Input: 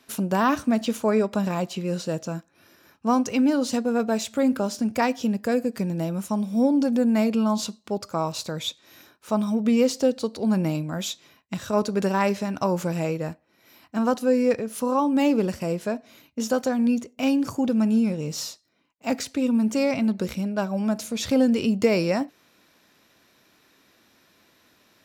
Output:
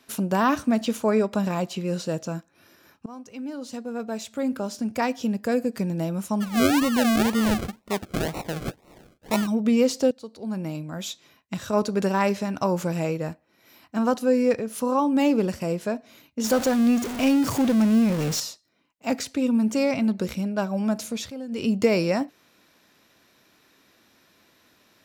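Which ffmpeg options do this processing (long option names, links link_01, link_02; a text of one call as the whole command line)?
ffmpeg -i in.wav -filter_complex "[0:a]asplit=3[link_01][link_02][link_03];[link_01]afade=type=out:start_time=6.4:duration=0.02[link_04];[link_02]acrusher=samples=38:mix=1:aa=0.000001:lfo=1:lforange=22.8:lforate=2,afade=type=in:start_time=6.4:duration=0.02,afade=type=out:start_time=9.46:duration=0.02[link_05];[link_03]afade=type=in:start_time=9.46:duration=0.02[link_06];[link_04][link_05][link_06]amix=inputs=3:normalize=0,asettb=1/sr,asplit=3[link_07][link_08][link_09];[link_07]atrim=end=16.444[link_10];[link_08]atrim=start=16.44:end=18.4,asetpts=PTS-STARTPTS,afade=type=in:duration=0.004:curve=qsin,afade=type=out:start_time=1.956:duration=0.004:curve=qsin,aeval=exprs='val(0)+0.5*0.0531*sgn(val(0))':channel_layout=same[link_11];[link_09]atrim=start=18.396[link_12];[link_10][link_11]acrossfade=duration=0.004:curve1=hsin:curve2=qsin[link_13];[link_13][link_12]acrossfade=duration=0.004:curve1=qsin:curve2=hsin,asplit=5[link_14][link_15][link_16][link_17][link_18];[link_14]atrim=end=3.06,asetpts=PTS-STARTPTS,afade=type=out:start_time=3.056:duration=0.004:curve=hsin:silence=0.0707946[link_19];[link_15]atrim=start=3.06:end=10.11,asetpts=PTS-STARTPTS,afade=type=in:duration=2.61:silence=0.0707946,afade=type=out:start_time=7.046:duration=0.004:curve=hsin:silence=0.177828[link_20];[link_16]atrim=start=10.11:end=21.32,asetpts=PTS-STARTPTS,afade=type=in:duration=1.52:silence=0.177828,afade=type=out:start_time=10.94:duration=0.27:curve=qsin:silence=0.158489[link_21];[link_17]atrim=start=21.32:end=21.49,asetpts=PTS-STARTPTS,volume=-16dB[link_22];[link_18]atrim=start=21.49,asetpts=PTS-STARTPTS,afade=type=in:duration=0.27:curve=qsin:silence=0.158489[link_23];[link_19][link_20][link_21][link_22][link_23]concat=n=5:v=0:a=1" out.wav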